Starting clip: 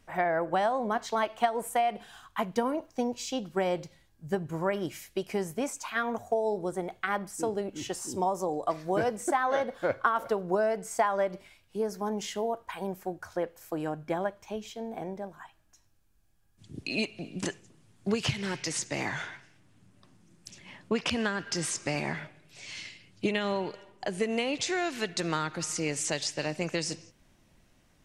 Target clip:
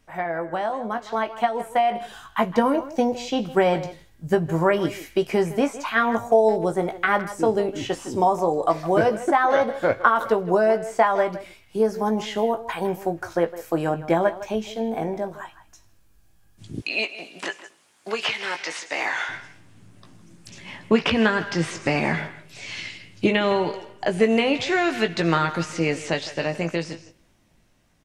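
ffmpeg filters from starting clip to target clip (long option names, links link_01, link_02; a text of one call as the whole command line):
ffmpeg -i in.wav -filter_complex "[0:a]acrossover=split=3700[link_01][link_02];[link_02]acompressor=threshold=-53dB:ratio=4:attack=1:release=60[link_03];[link_01][link_03]amix=inputs=2:normalize=0,asettb=1/sr,asplit=3[link_04][link_05][link_06];[link_04]atrim=end=16.804[link_07];[link_05]atrim=start=16.8:end=19.29,asetpts=PTS-STARTPTS,afade=type=in:duration=0.004:curve=qsin,afade=type=out:start_time=2.486:duration=0.004:curve=qsin,highpass=680[link_08];[link_06]atrim=start=19.286[link_09];[link_07][link_08]acrossfade=duration=0.004:curve1=hsin:curve2=qsin[link_10];[link_10][link_09]acrossfade=duration=0.004:curve1=qsin:curve2=hsin,dynaudnorm=framelen=330:gausssize=11:maxgain=9.5dB,asplit=2[link_11][link_12];[link_12]adelay=18,volume=-8dB[link_13];[link_11][link_13]amix=inputs=2:normalize=0,asplit=2[link_14][link_15];[link_15]adelay=160,highpass=300,lowpass=3400,asoftclip=type=hard:threshold=-10.5dB,volume=-14dB[link_16];[link_14][link_16]amix=inputs=2:normalize=0" out.wav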